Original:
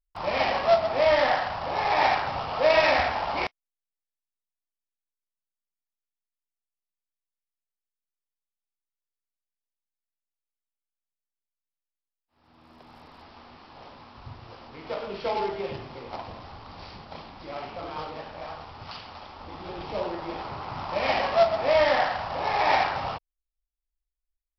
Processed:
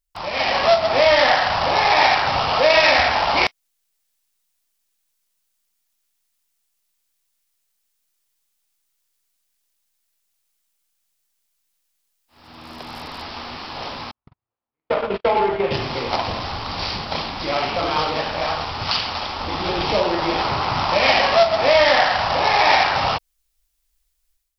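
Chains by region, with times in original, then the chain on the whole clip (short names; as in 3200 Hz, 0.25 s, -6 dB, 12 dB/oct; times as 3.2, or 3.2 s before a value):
14.11–15.71 LPF 2100 Hz + gate -36 dBFS, range -60 dB
whole clip: compressor 2:1, threshold -33 dBFS; high shelf 2300 Hz +10 dB; AGC gain up to 12 dB; gain +2 dB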